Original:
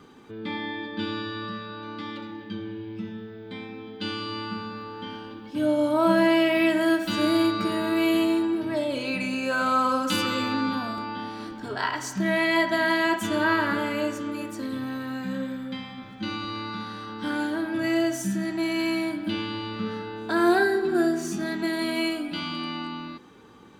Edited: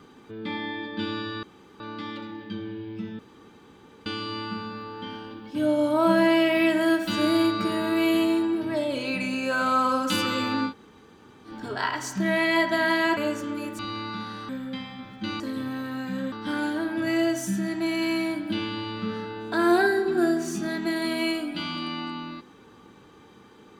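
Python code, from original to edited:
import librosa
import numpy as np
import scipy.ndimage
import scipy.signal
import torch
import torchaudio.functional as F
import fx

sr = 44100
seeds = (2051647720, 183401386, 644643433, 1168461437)

y = fx.edit(x, sr, fx.room_tone_fill(start_s=1.43, length_s=0.37),
    fx.room_tone_fill(start_s=3.19, length_s=0.87),
    fx.room_tone_fill(start_s=10.69, length_s=0.8, crossfade_s=0.1),
    fx.cut(start_s=13.17, length_s=0.77),
    fx.swap(start_s=14.56, length_s=0.92, other_s=16.39, other_length_s=0.7), tone=tone)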